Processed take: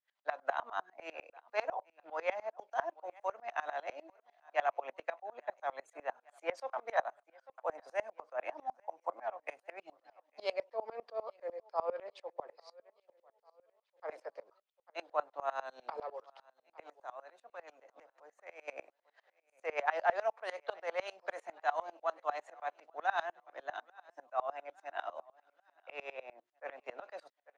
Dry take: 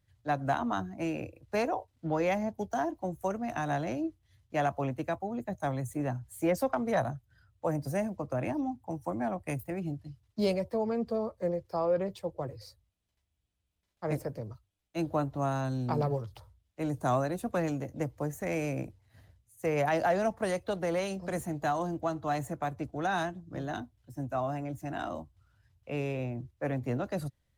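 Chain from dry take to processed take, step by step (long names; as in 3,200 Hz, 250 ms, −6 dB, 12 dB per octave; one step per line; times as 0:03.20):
high-pass filter 560 Hz 24 dB per octave
spectral tilt +4 dB per octave
0:16.26–0:18.68: downward compressor 2.5 to 1, threshold −49 dBFS, peak gain reduction 15 dB
head-to-tape spacing loss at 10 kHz 42 dB
repeating echo 846 ms, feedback 48%, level −23.5 dB
tremolo with a ramp in dB swelling 10 Hz, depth 25 dB
level +9.5 dB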